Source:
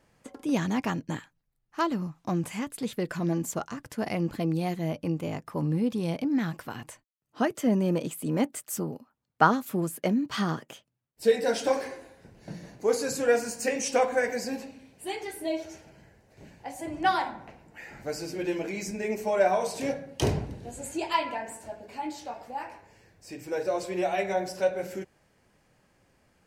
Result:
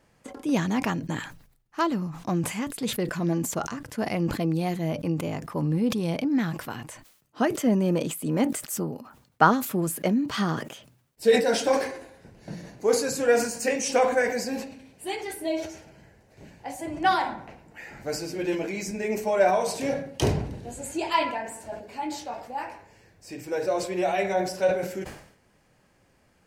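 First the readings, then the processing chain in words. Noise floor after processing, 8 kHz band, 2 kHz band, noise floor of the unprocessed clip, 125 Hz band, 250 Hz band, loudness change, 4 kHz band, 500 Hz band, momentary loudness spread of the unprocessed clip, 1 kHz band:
-64 dBFS, +4.0 dB, +3.0 dB, -74 dBFS, +2.5 dB, +2.5 dB, +2.5 dB, +4.0 dB, +2.5 dB, 16 LU, +2.5 dB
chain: sustainer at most 87 dB/s; gain +2 dB

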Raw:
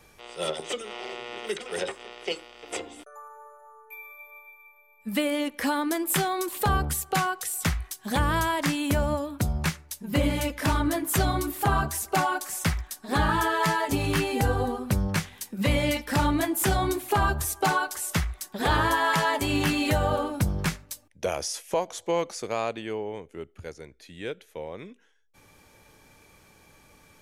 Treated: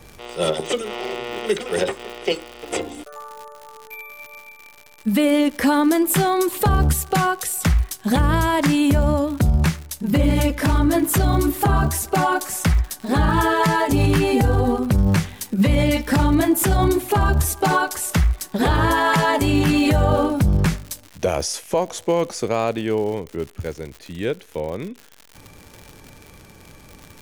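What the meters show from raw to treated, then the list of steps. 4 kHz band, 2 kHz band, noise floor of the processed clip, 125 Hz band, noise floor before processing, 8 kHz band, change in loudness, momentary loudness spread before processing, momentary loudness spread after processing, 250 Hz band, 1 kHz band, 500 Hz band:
+4.0 dB, +4.0 dB, -47 dBFS, +9.5 dB, -58 dBFS, +5.0 dB, +7.0 dB, 15 LU, 12 LU, +9.5 dB, +5.0 dB, +8.0 dB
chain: low shelf 480 Hz +8.5 dB; limiter -15 dBFS, peak gain reduction 10 dB; crackle 120/s -35 dBFS; gain +6 dB

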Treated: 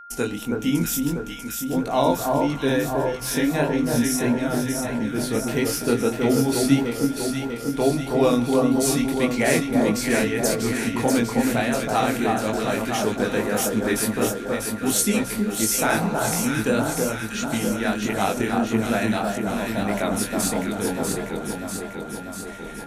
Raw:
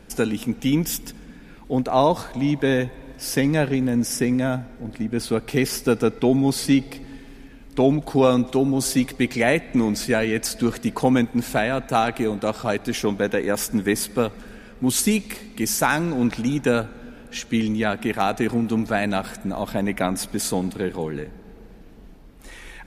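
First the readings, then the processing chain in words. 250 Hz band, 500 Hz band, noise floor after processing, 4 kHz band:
0.0 dB, 0.0 dB, -34 dBFS, +0.5 dB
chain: notch 4900 Hz, Q 15; gate -40 dBFS, range -37 dB; de-hum 64.04 Hz, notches 3; spectral repair 15.88–16.29, 230–1300 Hz both; high shelf 5100 Hz +6 dB; chorus 1.6 Hz, delay 18 ms, depth 7.6 ms; on a send: echo with dull and thin repeats by turns 0.322 s, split 1400 Hz, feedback 80%, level -2.5 dB; on the sum: whine 1400 Hz -40 dBFS

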